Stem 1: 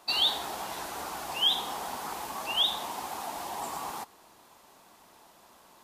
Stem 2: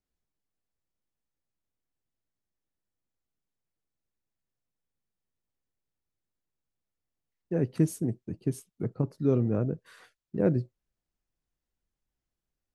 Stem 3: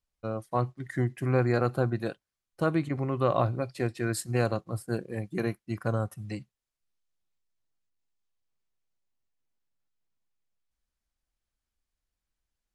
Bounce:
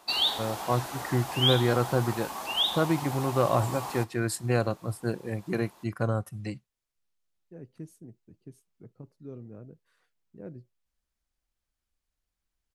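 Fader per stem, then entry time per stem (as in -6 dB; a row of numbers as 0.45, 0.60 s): 0.0, -18.0, +1.0 dB; 0.00, 0.00, 0.15 s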